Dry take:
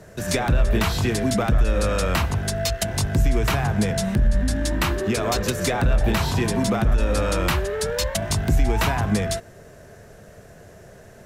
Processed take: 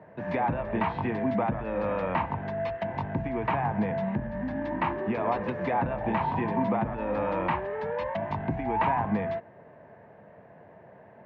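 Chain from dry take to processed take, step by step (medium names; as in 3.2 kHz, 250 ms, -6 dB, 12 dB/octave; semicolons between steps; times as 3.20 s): cabinet simulation 170–2100 Hz, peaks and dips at 400 Hz -6 dB, 910 Hz +10 dB, 1.4 kHz -9 dB; trim -3.5 dB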